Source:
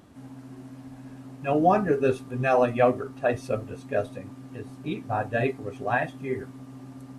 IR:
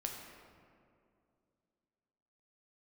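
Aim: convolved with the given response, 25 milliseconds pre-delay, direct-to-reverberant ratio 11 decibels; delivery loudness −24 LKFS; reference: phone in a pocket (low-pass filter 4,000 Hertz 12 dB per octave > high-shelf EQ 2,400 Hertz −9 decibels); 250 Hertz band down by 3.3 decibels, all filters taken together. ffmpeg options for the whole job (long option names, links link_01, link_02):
-filter_complex "[0:a]equalizer=frequency=250:width_type=o:gain=-4,asplit=2[link_01][link_02];[1:a]atrim=start_sample=2205,adelay=25[link_03];[link_02][link_03]afir=irnorm=-1:irlink=0,volume=-11dB[link_04];[link_01][link_04]amix=inputs=2:normalize=0,lowpass=4000,highshelf=frequency=2400:gain=-9,volume=3.5dB"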